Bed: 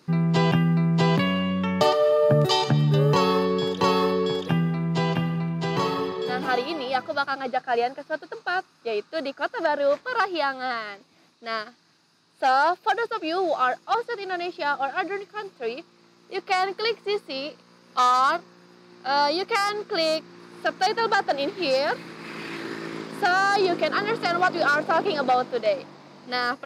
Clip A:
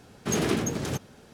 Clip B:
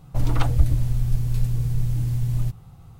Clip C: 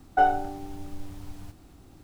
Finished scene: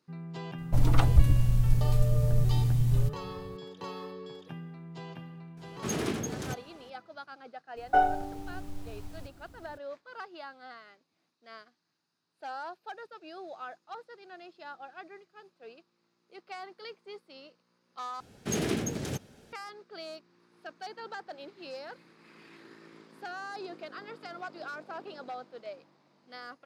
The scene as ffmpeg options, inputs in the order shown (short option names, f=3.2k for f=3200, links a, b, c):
-filter_complex "[1:a]asplit=2[a][b];[0:a]volume=-19.5dB[c];[b]equalizer=f=1.1k:w=1.9:g=-5[d];[c]asplit=2[e][f];[e]atrim=end=18.204[g];[d]atrim=end=1.33,asetpts=PTS-STARTPTS,volume=-4dB[h];[f]atrim=start=19.526[i];[2:a]atrim=end=2.99,asetpts=PTS-STARTPTS,volume=-2dB,afade=t=in:d=0.004:c=hsin,afade=t=out:st=2.986:d=0.004:c=hsin,adelay=580[j];[a]atrim=end=1.33,asetpts=PTS-STARTPTS,volume=-6dB,afade=t=in:d=0.004:c=hsin,afade=t=out:st=1.326:d=0.004:c=hsin,adelay=245637S[k];[3:a]atrim=end=2.03,asetpts=PTS-STARTPTS,volume=-2.5dB,afade=t=in:d=0.02,afade=t=out:st=2.01:d=0.02,adelay=7760[l];[g][h]acrossfade=d=0.004:c1=hsin:c2=hsin[m];[m][i]acrossfade=d=0.004:c1=hsin:c2=hsin[n];[n][j][k][l]amix=inputs=4:normalize=0"